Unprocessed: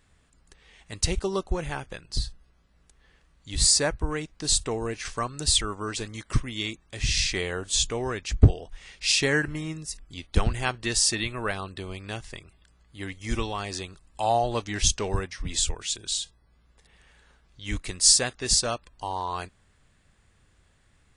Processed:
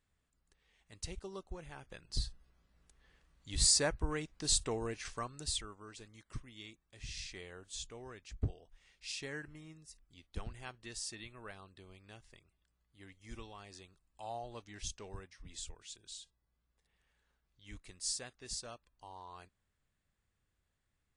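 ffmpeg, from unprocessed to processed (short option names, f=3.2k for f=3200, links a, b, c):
-af "volume=-7.5dB,afade=t=in:st=1.75:d=0.46:silence=0.298538,afade=t=out:st=4.72:d=1.06:silence=0.237137"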